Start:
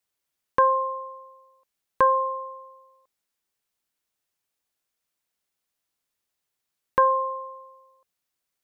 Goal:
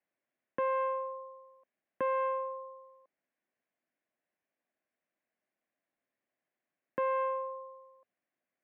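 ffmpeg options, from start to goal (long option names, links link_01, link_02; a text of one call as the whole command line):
ffmpeg -i in.wav -filter_complex "[0:a]acrossover=split=400[link_01][link_02];[link_02]alimiter=limit=-21.5dB:level=0:latency=1[link_03];[link_01][link_03]amix=inputs=2:normalize=0,asoftclip=type=tanh:threshold=-26.5dB,highpass=220,equalizer=frequency=250:width_type=q:width=4:gain=3,equalizer=frequency=440:width_type=q:width=4:gain=-6,equalizer=frequency=620:width_type=q:width=4:gain=4,equalizer=frequency=910:width_type=q:width=4:gain=-9,equalizer=frequency=1300:width_type=q:width=4:gain=-10,lowpass=frequency=2000:width=0.5412,lowpass=frequency=2000:width=1.3066,volume=4dB" out.wav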